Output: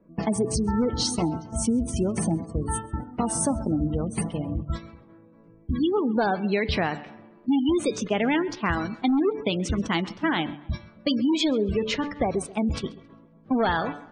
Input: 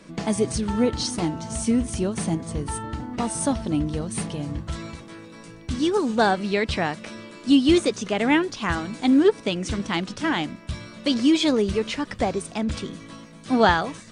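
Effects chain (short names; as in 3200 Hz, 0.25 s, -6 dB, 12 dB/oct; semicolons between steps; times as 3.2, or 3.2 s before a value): gate -30 dBFS, range -12 dB; de-hum 145.6 Hz, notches 31; in parallel at -9 dB: wrapped overs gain 12.5 dB; on the sum: spectral gate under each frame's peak -25 dB strong; compressor, threshold -20 dBFS, peak gain reduction 7.5 dB; low-pass opened by the level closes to 730 Hz, open at -22.5 dBFS; on a send: tape echo 0.133 s, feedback 46%, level -18 dB, low-pass 2700 Hz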